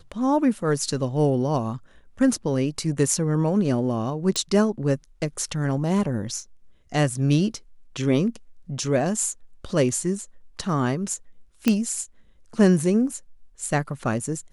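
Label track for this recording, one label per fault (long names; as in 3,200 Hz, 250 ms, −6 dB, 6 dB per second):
4.360000	4.360000	click
11.680000	11.680000	click −6 dBFS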